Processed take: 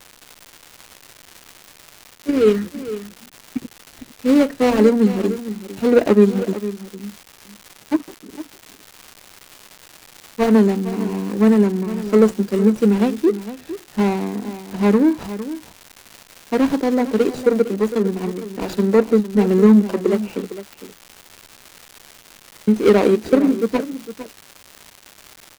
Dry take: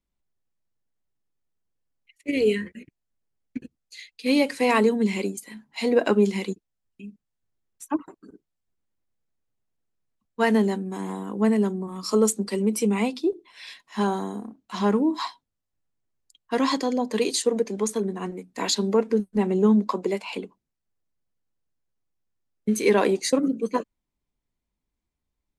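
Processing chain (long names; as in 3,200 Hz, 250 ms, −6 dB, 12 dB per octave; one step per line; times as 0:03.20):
running median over 41 samples
single-tap delay 456 ms −13.5 dB
surface crackle 390 per second −36 dBFS
level +8 dB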